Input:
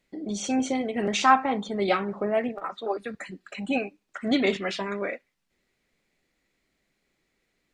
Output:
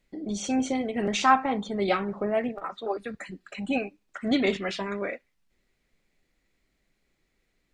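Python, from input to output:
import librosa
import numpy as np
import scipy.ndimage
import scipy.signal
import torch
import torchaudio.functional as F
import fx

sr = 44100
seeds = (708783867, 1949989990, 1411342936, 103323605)

y = fx.low_shelf(x, sr, hz=79.0, db=12.0)
y = y * librosa.db_to_amplitude(-1.5)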